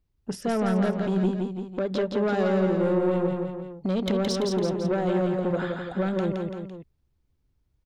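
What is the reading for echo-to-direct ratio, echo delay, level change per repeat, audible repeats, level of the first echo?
−2.5 dB, 169 ms, −5.0 dB, 3, −4.0 dB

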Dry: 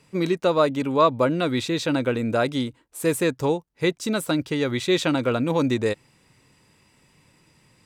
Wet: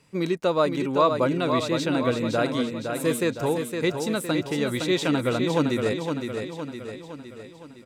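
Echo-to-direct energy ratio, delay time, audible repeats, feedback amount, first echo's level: −4.5 dB, 512 ms, 6, 53%, −6.0 dB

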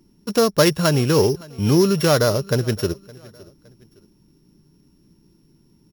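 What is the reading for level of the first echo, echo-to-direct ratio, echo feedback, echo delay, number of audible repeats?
−23.0 dB, −22.5 dB, 37%, 564 ms, 2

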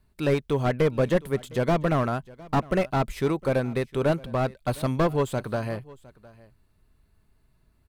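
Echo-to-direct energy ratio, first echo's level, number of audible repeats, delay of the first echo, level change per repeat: −22.0 dB, −22.0 dB, 1, 709 ms, repeats not evenly spaced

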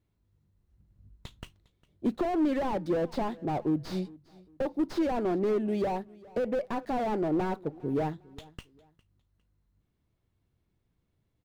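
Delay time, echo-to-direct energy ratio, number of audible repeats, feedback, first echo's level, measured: 405 ms, −22.0 dB, 2, 31%, −22.5 dB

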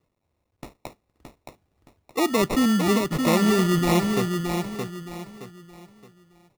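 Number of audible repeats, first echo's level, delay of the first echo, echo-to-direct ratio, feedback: 4, −5.0 dB, 620 ms, −4.5 dB, 32%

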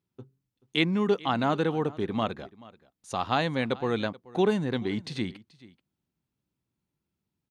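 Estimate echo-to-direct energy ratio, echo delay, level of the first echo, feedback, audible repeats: −21.0 dB, 432 ms, −21.0 dB, repeats not evenly spaced, 1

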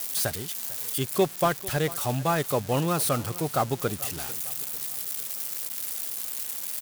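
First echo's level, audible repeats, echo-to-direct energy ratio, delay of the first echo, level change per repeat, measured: −19.0 dB, 3, −18.0 dB, 447 ms, −6.5 dB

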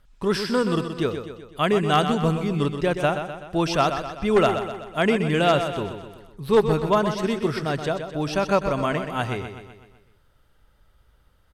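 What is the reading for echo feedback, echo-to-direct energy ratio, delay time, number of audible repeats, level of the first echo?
53%, −7.0 dB, 126 ms, 5, −8.5 dB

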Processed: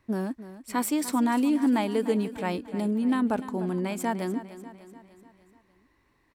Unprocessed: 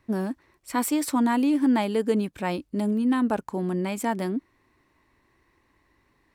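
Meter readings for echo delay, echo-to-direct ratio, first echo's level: 297 ms, −12.5 dB, −14.0 dB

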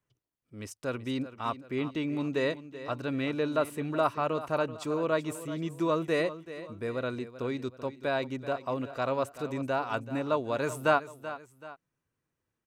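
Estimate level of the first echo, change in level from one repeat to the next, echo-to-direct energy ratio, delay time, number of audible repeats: −14.0 dB, −7.0 dB, −13.0 dB, 382 ms, 2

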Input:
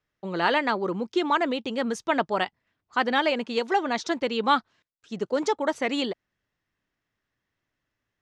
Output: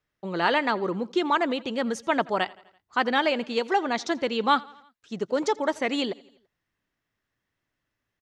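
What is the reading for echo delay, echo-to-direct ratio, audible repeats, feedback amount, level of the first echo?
84 ms, −21.5 dB, 3, 57%, −23.0 dB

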